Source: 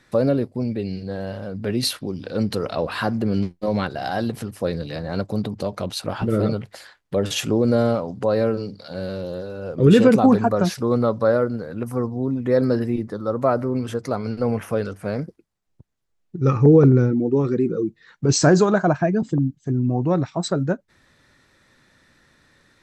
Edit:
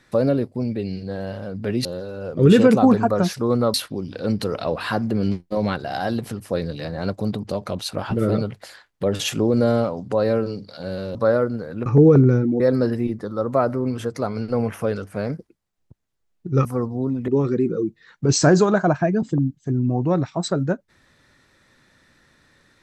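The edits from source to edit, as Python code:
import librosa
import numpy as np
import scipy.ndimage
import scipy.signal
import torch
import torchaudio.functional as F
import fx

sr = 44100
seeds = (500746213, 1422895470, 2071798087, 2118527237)

y = fx.edit(x, sr, fx.move(start_s=9.26, length_s=1.89, to_s=1.85),
    fx.swap(start_s=11.86, length_s=0.63, other_s=16.54, other_length_s=0.74), tone=tone)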